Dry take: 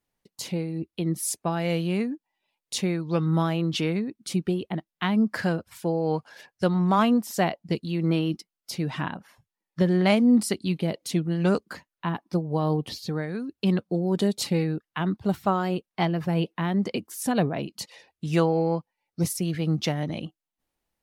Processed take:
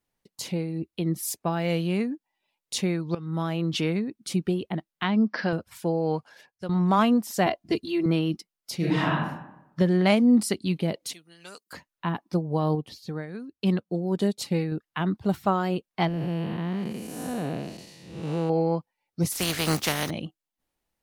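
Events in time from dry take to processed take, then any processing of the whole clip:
1.16–1.68 s: decimation joined by straight lines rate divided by 2×
3.15–3.90 s: fade in equal-power, from -17.5 dB
5.03–5.53 s: brick-wall FIR band-pass 170–6000 Hz
6.03–6.69 s: fade out, to -13.5 dB
7.46–8.06 s: comb 2.9 ms, depth 99%
8.76–9.16 s: reverb throw, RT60 0.87 s, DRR -6 dB
11.13–11.73 s: differentiator
12.75–14.72 s: upward expansion, over -37 dBFS
16.08–18.50 s: spectral blur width 330 ms
19.31–20.09 s: spectral contrast reduction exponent 0.4

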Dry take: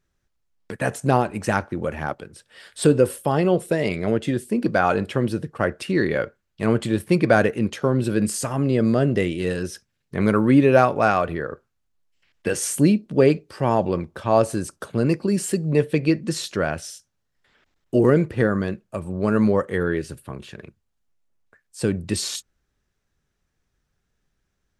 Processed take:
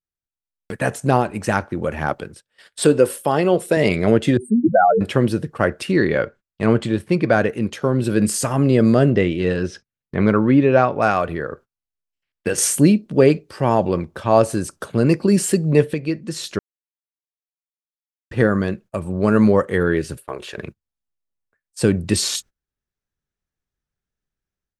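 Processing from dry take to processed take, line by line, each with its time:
2.83–3.77 s: high-pass 280 Hz 6 dB/octave
4.37–5.01 s: spectral contrast enhancement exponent 3.8
5.96–7.49 s: distance through air 54 m
9.10–11.02 s: distance through air 130 m
12.58–15.94 s: gain +8.5 dB
16.59–18.31 s: mute
20.17–20.58 s: resonant low shelf 300 Hz -12.5 dB, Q 1.5
whole clip: gate -43 dBFS, range -23 dB; level rider gain up to 11.5 dB; trim -1 dB

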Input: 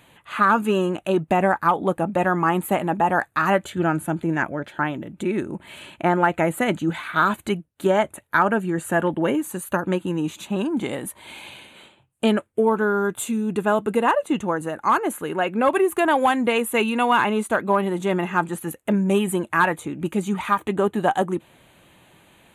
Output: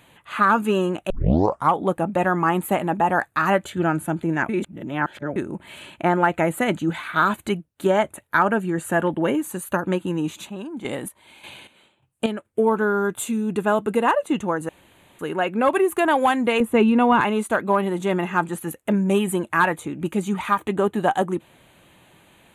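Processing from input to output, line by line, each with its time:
1.10 s: tape start 0.63 s
4.49–5.36 s: reverse
10.26–12.45 s: square tremolo 1.7 Hz, depth 65%, duty 40%
14.69–15.19 s: room tone
16.60–17.21 s: tilt EQ -3.5 dB/octave

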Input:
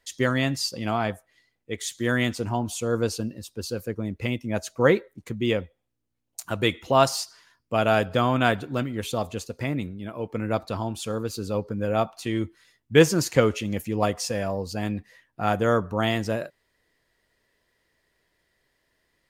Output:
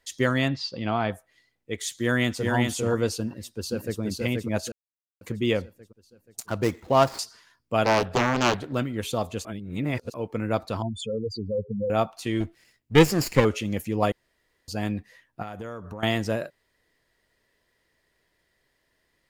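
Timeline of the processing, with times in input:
0.48–1.12 s: Chebyshev low-pass 4.2 kHz, order 3
1.94–2.53 s: echo throw 400 ms, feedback 15%, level -3 dB
3.24–4.00 s: echo throw 480 ms, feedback 50%, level -2 dB
4.72–5.21 s: mute
6.46–7.19 s: median filter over 15 samples
7.84–8.73 s: loudspeaker Doppler distortion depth 0.97 ms
9.45–10.14 s: reverse
10.82–11.90 s: spectral contrast enhancement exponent 3.3
12.40–13.45 s: comb filter that takes the minimum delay 0.4 ms
14.12–14.68 s: room tone
15.42–16.03 s: compression 10:1, threshold -32 dBFS

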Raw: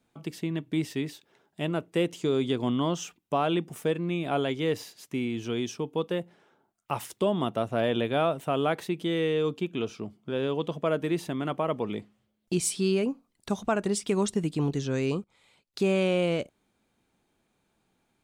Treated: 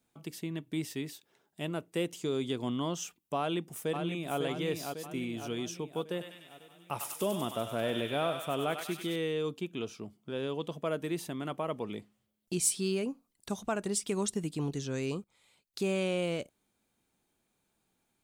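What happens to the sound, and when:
3.38–4.38 s: echo throw 550 ms, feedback 55%, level -5 dB
6.10–9.16 s: thinning echo 98 ms, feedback 77%, high-pass 1.2 kHz, level -4 dB
whole clip: treble shelf 6.2 kHz +11.5 dB; trim -6.5 dB

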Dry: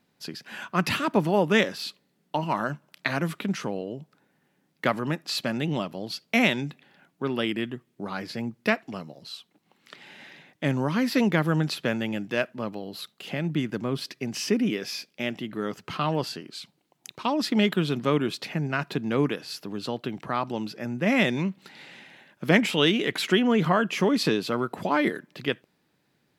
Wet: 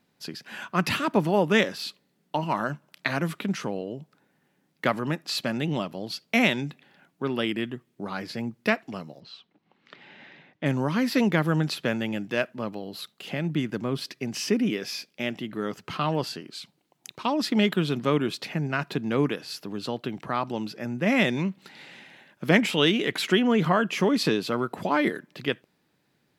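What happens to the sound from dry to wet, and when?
9.20–10.66 s: distance through air 190 m

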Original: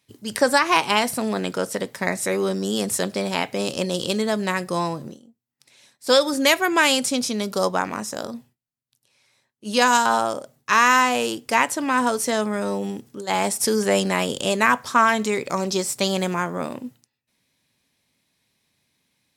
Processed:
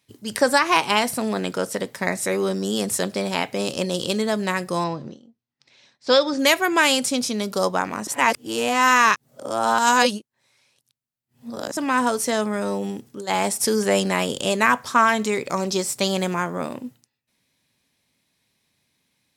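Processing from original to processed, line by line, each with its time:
4.84–6.39 s: low-pass 5.6 kHz 24 dB/octave
8.07–11.77 s: reverse

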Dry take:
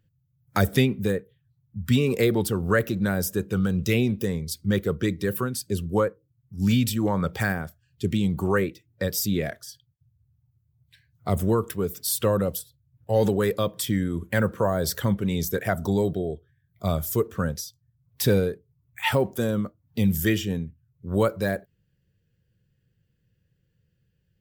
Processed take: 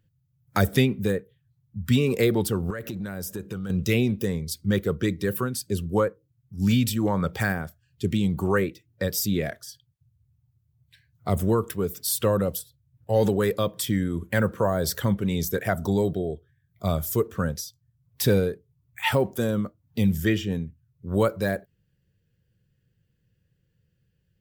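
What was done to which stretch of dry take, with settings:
2.70–3.70 s: compression 12:1, threshold -28 dBFS
20.10–20.52 s: peaking EQ 13 kHz -9.5 dB 1.7 oct

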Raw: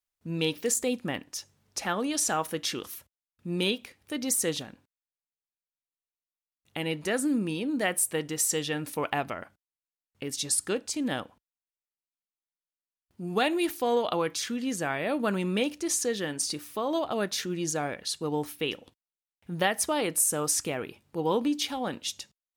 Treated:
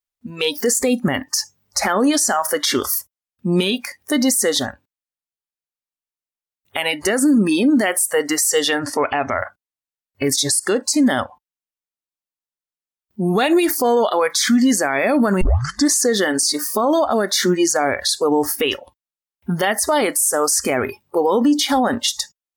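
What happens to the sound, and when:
8.79–9.36 s: low-pass 5.6 kHz
15.41 s: tape start 0.50 s
whole clip: compression 2.5:1, threshold -32 dBFS; spectral noise reduction 23 dB; loudness maximiser +29.5 dB; trim -7.5 dB

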